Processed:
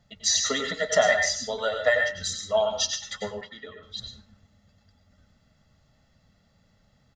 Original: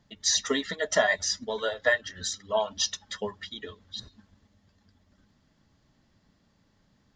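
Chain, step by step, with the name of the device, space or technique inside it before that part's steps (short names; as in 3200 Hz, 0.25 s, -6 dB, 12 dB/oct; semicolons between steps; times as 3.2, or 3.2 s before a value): microphone above a desk (comb 1.5 ms, depth 56%; reverb RT60 0.40 s, pre-delay 88 ms, DRR 4 dB); 3.41–3.83 three-band isolator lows -12 dB, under 170 Hz, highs -14 dB, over 2400 Hz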